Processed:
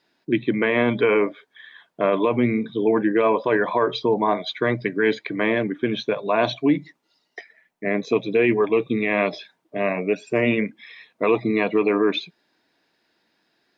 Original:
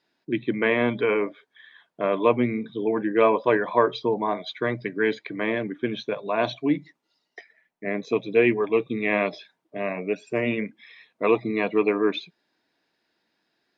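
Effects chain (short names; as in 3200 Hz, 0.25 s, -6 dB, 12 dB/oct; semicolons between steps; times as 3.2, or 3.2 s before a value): limiter -15 dBFS, peak gain reduction 10 dB; gain +5.5 dB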